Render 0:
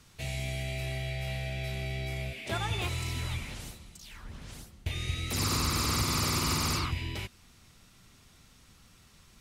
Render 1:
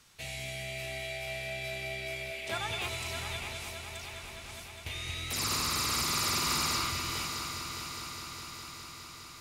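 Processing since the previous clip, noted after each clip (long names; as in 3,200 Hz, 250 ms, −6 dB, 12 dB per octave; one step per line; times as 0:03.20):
low-shelf EQ 410 Hz −11 dB
echo machine with several playback heads 205 ms, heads first and third, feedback 75%, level −10 dB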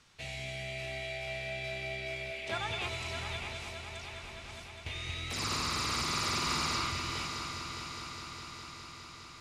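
high-frequency loss of the air 70 metres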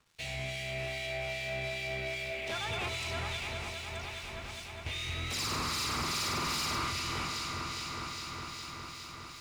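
leveller curve on the samples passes 3
two-band tremolo in antiphase 2.5 Hz, depth 50%, crossover 2,200 Hz
level −5.5 dB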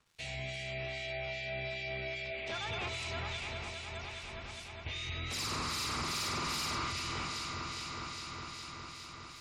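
gate on every frequency bin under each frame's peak −30 dB strong
level −2.5 dB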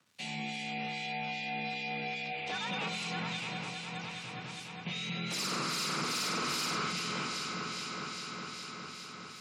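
frequency shifter +88 Hz
level +2 dB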